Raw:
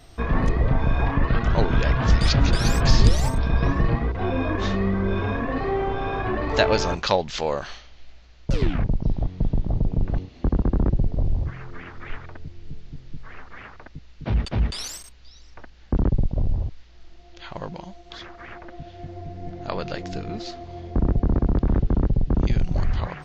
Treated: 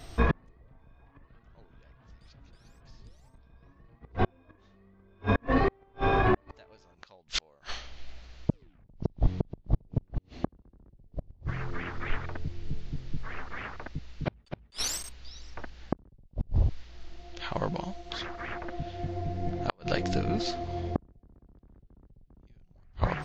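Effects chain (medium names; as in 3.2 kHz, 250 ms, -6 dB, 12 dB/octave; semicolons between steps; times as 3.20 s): inverted gate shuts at -15 dBFS, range -39 dB; trim +2.5 dB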